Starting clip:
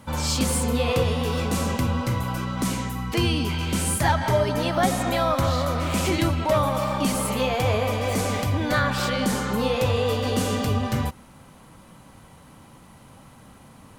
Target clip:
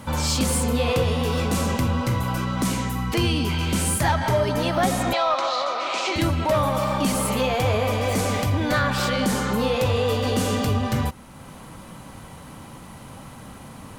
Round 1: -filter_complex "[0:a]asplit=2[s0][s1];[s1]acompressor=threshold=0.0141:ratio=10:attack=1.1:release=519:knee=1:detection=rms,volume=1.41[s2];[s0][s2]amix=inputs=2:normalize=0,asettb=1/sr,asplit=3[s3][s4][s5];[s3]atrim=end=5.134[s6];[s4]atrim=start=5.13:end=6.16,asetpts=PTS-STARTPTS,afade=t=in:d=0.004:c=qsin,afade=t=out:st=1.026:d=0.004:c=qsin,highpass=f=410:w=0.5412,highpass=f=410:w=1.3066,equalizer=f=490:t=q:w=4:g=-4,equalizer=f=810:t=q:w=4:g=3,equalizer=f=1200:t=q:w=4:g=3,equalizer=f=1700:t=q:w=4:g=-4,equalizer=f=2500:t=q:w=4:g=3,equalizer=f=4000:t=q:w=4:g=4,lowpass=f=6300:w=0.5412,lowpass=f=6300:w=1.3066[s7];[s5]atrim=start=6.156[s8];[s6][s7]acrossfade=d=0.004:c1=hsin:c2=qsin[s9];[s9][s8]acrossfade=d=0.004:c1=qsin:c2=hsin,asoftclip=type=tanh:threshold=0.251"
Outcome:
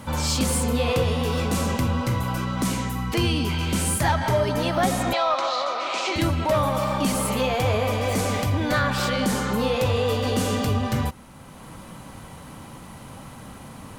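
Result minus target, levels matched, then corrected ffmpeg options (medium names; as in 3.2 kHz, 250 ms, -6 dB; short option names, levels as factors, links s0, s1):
compression: peak gain reduction +5.5 dB
-filter_complex "[0:a]asplit=2[s0][s1];[s1]acompressor=threshold=0.0282:ratio=10:attack=1.1:release=519:knee=1:detection=rms,volume=1.41[s2];[s0][s2]amix=inputs=2:normalize=0,asettb=1/sr,asplit=3[s3][s4][s5];[s3]atrim=end=5.134[s6];[s4]atrim=start=5.13:end=6.16,asetpts=PTS-STARTPTS,afade=t=in:d=0.004:c=qsin,afade=t=out:st=1.026:d=0.004:c=qsin,highpass=f=410:w=0.5412,highpass=f=410:w=1.3066,equalizer=f=490:t=q:w=4:g=-4,equalizer=f=810:t=q:w=4:g=3,equalizer=f=1200:t=q:w=4:g=3,equalizer=f=1700:t=q:w=4:g=-4,equalizer=f=2500:t=q:w=4:g=3,equalizer=f=4000:t=q:w=4:g=4,lowpass=f=6300:w=0.5412,lowpass=f=6300:w=1.3066[s7];[s5]atrim=start=6.156[s8];[s6][s7]acrossfade=d=0.004:c1=hsin:c2=qsin[s9];[s9][s8]acrossfade=d=0.004:c1=qsin:c2=hsin,asoftclip=type=tanh:threshold=0.251"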